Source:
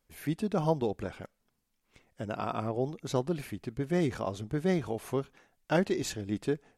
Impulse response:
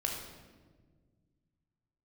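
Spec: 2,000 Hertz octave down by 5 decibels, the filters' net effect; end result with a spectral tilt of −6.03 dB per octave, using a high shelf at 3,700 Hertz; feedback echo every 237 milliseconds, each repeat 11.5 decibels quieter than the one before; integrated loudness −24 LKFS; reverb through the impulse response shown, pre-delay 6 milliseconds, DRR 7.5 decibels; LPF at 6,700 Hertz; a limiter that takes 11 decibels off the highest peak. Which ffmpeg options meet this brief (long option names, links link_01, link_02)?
-filter_complex "[0:a]lowpass=6700,equalizer=frequency=2000:width_type=o:gain=-8.5,highshelf=frequency=3700:gain=6.5,alimiter=level_in=2dB:limit=-24dB:level=0:latency=1,volume=-2dB,aecho=1:1:237|474|711:0.266|0.0718|0.0194,asplit=2[link_01][link_02];[1:a]atrim=start_sample=2205,adelay=6[link_03];[link_02][link_03]afir=irnorm=-1:irlink=0,volume=-11dB[link_04];[link_01][link_04]amix=inputs=2:normalize=0,volume=12.5dB"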